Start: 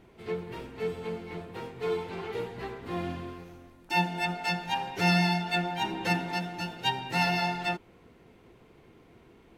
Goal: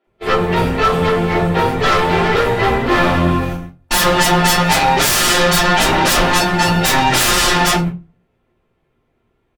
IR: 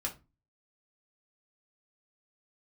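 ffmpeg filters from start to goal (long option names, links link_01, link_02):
-filter_complex "[0:a]acrossover=split=250|5200[link_01][link_02][link_03];[link_03]adelay=40[link_04];[link_01]adelay=70[link_05];[link_05][link_02][link_04]amix=inputs=3:normalize=0,aeval=exprs='0.211*sin(PI/2*10*val(0)/0.211)':channel_layout=same,agate=range=-35dB:threshold=-24dB:ratio=16:detection=peak[link_06];[1:a]atrim=start_sample=2205[link_07];[link_06][link_07]afir=irnorm=-1:irlink=0,volume=1.5dB"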